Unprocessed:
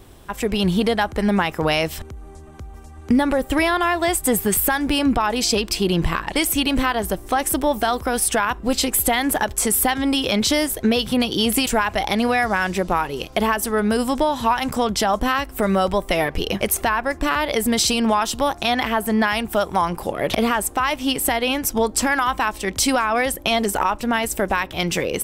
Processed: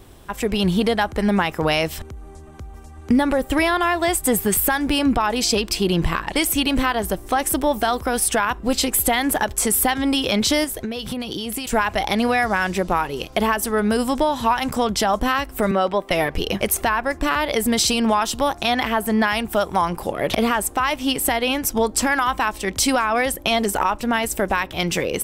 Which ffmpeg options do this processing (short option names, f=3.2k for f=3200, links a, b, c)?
-filter_complex "[0:a]asettb=1/sr,asplit=3[a][b][c];[a]atrim=end=10.644[d];[b]atrim=start=10.64:end=11.73,asetpts=PTS-STARTPTS,afade=t=in:d=0.004:c=qsin,afade=t=out:st=1.086:d=0.004:c=qsin,acompressor=threshold=-23dB:ratio=12:attack=3.2:release=140:knee=1:detection=peak[e];[c]atrim=start=11.726[f];[d][e]acrossfade=d=0.004:c1=hsin:c2=qsin[g];[g][f]acrossfade=d=0.004:c1=qsin:c2=hsin,asettb=1/sr,asplit=3[h][i][j];[h]atrim=end=15.714[k];[i]atrim=start=15.71:end=16.11,asetpts=PTS-STARTPTS,afade=t=in:d=0.004:c=qsin,afade=t=out:st=0.396:d=0.004:c=qsin,acrossover=split=180 4500:gain=0.112 1 0.2[l][m][n];[l][m][n]amix=inputs=3:normalize=0[o];[j]atrim=start=16.106[p];[k][o]acrossfade=d=0.004:c1=hsin:c2=qsin[q];[q][p]acrossfade=d=0.004:c1=qsin:c2=hsin"